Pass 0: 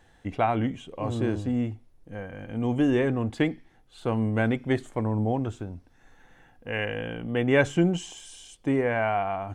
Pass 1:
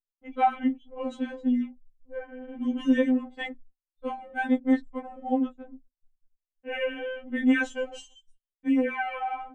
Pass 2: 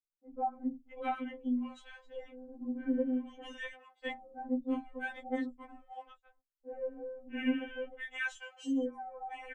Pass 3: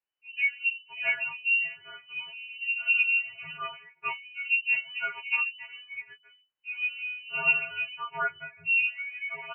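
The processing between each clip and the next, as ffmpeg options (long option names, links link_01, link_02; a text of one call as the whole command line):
ffmpeg -i in.wav -af "anlmdn=1,agate=range=-39dB:threshold=-52dB:ratio=16:detection=peak,afftfilt=real='re*3.46*eq(mod(b,12),0)':imag='im*3.46*eq(mod(b,12),0)':win_size=2048:overlap=0.75" out.wav
ffmpeg -i in.wav -filter_complex "[0:a]acrossover=split=220|820[link_01][link_02][link_03];[link_01]adelay=40[link_04];[link_03]adelay=650[link_05];[link_04][link_02][link_05]amix=inputs=3:normalize=0,volume=-6.5dB" out.wav
ffmpeg -i in.wav -af "lowpass=frequency=2600:width_type=q:width=0.5098,lowpass=frequency=2600:width_type=q:width=0.6013,lowpass=frequency=2600:width_type=q:width=0.9,lowpass=frequency=2600:width_type=q:width=2.563,afreqshift=-3000,volume=7dB" out.wav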